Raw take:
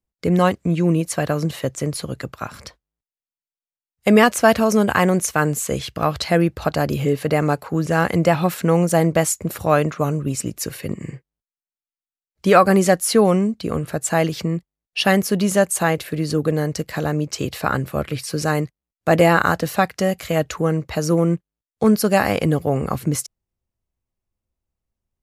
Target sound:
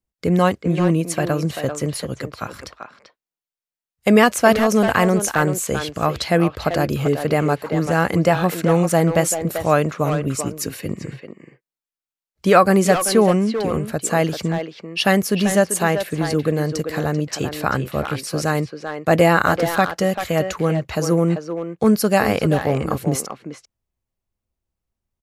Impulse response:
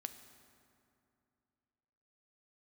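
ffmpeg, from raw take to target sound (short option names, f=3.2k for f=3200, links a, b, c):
-filter_complex "[0:a]asplit=2[a][b];[b]adelay=390,highpass=300,lowpass=3.4k,asoftclip=type=hard:threshold=-11.5dB,volume=-6dB[c];[a][c]amix=inputs=2:normalize=0"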